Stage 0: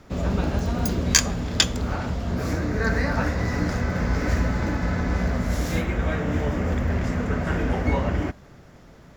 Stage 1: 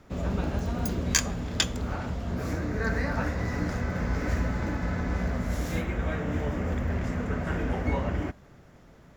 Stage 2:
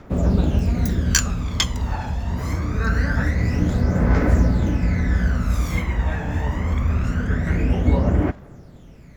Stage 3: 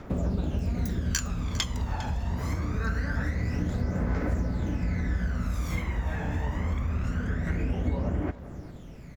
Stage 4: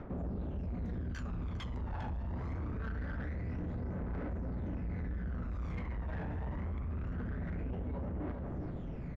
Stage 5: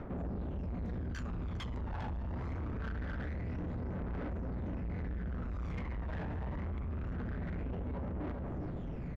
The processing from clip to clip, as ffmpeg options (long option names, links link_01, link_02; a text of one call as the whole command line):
ffmpeg -i in.wav -af "equalizer=frequency=4800:width_type=o:width=0.77:gain=-3,volume=-5dB" out.wav
ffmpeg -i in.wav -af "aphaser=in_gain=1:out_gain=1:delay=1.2:decay=0.62:speed=0.24:type=triangular,volume=3.5dB" out.wav
ffmpeg -i in.wav -af "acompressor=threshold=-28dB:ratio=3,aecho=1:1:403:0.141" out.wav
ffmpeg -i in.wav -af "areverse,acompressor=threshold=-35dB:ratio=6,areverse,asoftclip=type=tanh:threshold=-39dB,adynamicsmooth=sensitivity=4:basefreq=1900,volume=5dB" out.wav
ffmpeg -i in.wav -af "asoftclip=type=tanh:threshold=-37.5dB,volume=3dB" out.wav